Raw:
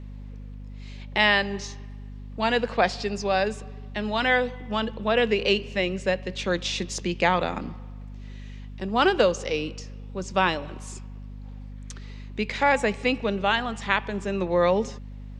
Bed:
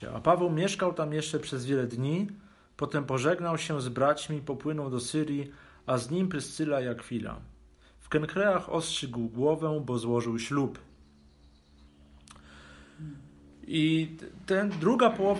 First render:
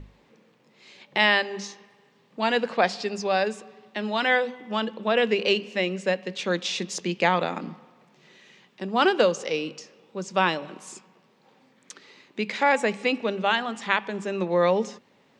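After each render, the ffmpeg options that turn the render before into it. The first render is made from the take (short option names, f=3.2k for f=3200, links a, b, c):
-af "bandreject=f=50:t=h:w=6,bandreject=f=100:t=h:w=6,bandreject=f=150:t=h:w=6,bandreject=f=200:t=h:w=6,bandreject=f=250:t=h:w=6"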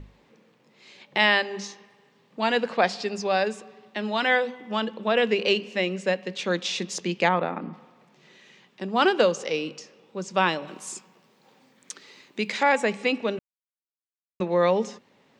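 -filter_complex "[0:a]asplit=3[a][b][c];[a]afade=t=out:st=7.28:d=0.02[d];[b]lowpass=2k,afade=t=in:st=7.28:d=0.02,afade=t=out:st=7.72:d=0.02[e];[c]afade=t=in:st=7.72:d=0.02[f];[d][e][f]amix=inputs=3:normalize=0,asettb=1/sr,asplit=3[g][h][i];[g]atrim=end=10.674[j];[h]atrim=start=10.67:end=12.63,asetpts=PTS-STARTPTS,afade=t=in:d=0.004:c=qsin,afade=t=out:st=1.956:d=0.004:c=qsin,highshelf=f=5.9k:g=10[k];[i]atrim=start=12.626[l];[j][k]acrossfade=d=0.004:c1=hsin:c2=qsin[m];[m][l]acrossfade=d=0.004:c1=qsin:c2=hsin,asplit=3[n][o][p];[n]atrim=end=13.39,asetpts=PTS-STARTPTS,afade=t=out:st=13.386:d=0.004:c=hsin[q];[o]atrim=start=13.39:end=14.4,asetpts=PTS-STARTPTS,volume=0[r];[p]atrim=start=14.4,asetpts=PTS-STARTPTS,afade=t=in:d=0.004:c=hsin[s];[q][r][s]concat=n=3:v=0:a=1"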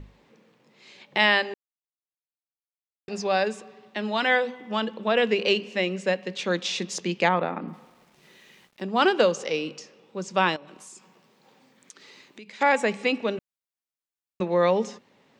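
-filter_complex "[0:a]asettb=1/sr,asplit=3[a][b][c];[a]atrim=end=7.684[d];[b]atrim=start=7.68:end=8.84,asetpts=PTS-STARTPTS,afade=t=in:d=0.004:c=qsin,afade=t=out:st=1.156:d=0.004:c=qsin,aeval=exprs='val(0)*gte(abs(val(0)),0.00126)':c=same[e];[c]atrim=start=8.836[f];[d][e]acrossfade=d=0.004:c1=hsin:c2=qsin[g];[g][f]acrossfade=d=0.004:c1=qsin:c2=hsin,asettb=1/sr,asplit=3[h][i][j];[h]atrim=end=10.564[k];[i]atrim=start=10.56:end=12.61,asetpts=PTS-STARTPTS,afade=t=in:d=0.004:c=qsin,afade=t=out:st=2.046:d=0.004:c=qsin,acompressor=threshold=-44dB:ratio=4:attack=3.2:release=140:knee=1:detection=peak[l];[j]atrim=start=12.606[m];[k][l]acrossfade=d=0.004:c1=hsin:c2=qsin[n];[n][m]acrossfade=d=0.004:c1=qsin:c2=hsin,asplit=3[o][p][q];[o]atrim=end=1.54,asetpts=PTS-STARTPTS,afade=t=out:st=1.536:d=0.004:c=hsin[r];[p]atrim=start=1.54:end=3.08,asetpts=PTS-STARTPTS,volume=0[s];[q]atrim=start=3.08,asetpts=PTS-STARTPTS,afade=t=in:d=0.004:c=hsin[t];[r][s][t]concat=n=3:v=0:a=1"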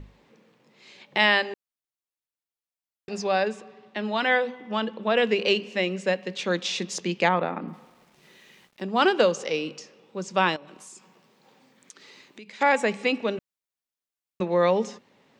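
-filter_complex "[0:a]asettb=1/sr,asplit=3[a][b][c];[a]atrim=end=3.314[d];[b]atrim=start=3.31:end=5.12,asetpts=PTS-STARTPTS,afade=t=in:d=0.004:c=qsin,afade=t=out:st=1.806:d=0.004:c=qsin,highshelf=f=7.1k:g=-10.5[e];[c]atrim=start=5.116[f];[d][e]acrossfade=d=0.004:c1=hsin:c2=qsin[g];[g][f]acrossfade=d=0.004:c1=qsin:c2=hsin"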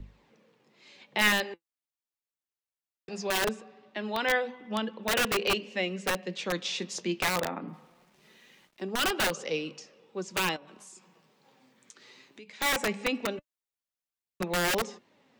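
-filter_complex "[0:a]flanger=delay=0.2:depth=8.6:regen=64:speed=0.21:shape=triangular,acrossover=split=140|1300|2900[a][b][c][d];[b]aeval=exprs='(mod(13.3*val(0)+1,2)-1)/13.3':c=same[e];[a][e][c][d]amix=inputs=4:normalize=0"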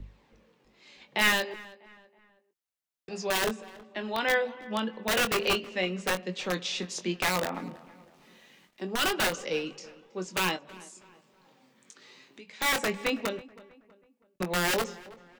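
-filter_complex "[0:a]asplit=2[a][b];[b]adelay=22,volume=-9dB[c];[a][c]amix=inputs=2:normalize=0,asplit=2[d][e];[e]adelay=323,lowpass=f=2.5k:p=1,volume=-19.5dB,asplit=2[f][g];[g]adelay=323,lowpass=f=2.5k:p=1,volume=0.42,asplit=2[h][i];[i]adelay=323,lowpass=f=2.5k:p=1,volume=0.42[j];[d][f][h][j]amix=inputs=4:normalize=0"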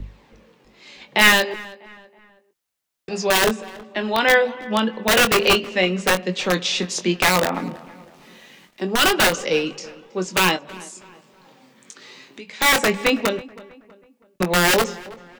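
-af "volume=10.5dB"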